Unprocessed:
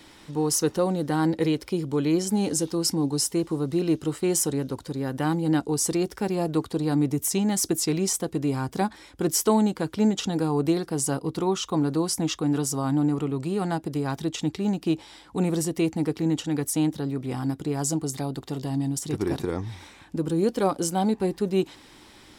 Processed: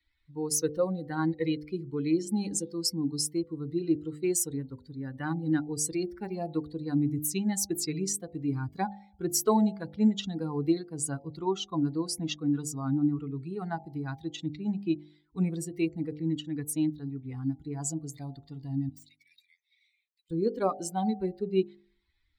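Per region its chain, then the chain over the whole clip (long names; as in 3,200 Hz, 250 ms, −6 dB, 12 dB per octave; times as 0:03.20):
0:18.89–0:20.31: elliptic high-pass filter 2,100 Hz, stop band 50 dB + hard clipping −36 dBFS
whole clip: spectral dynamics exaggerated over time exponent 2; hum removal 50.12 Hz, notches 17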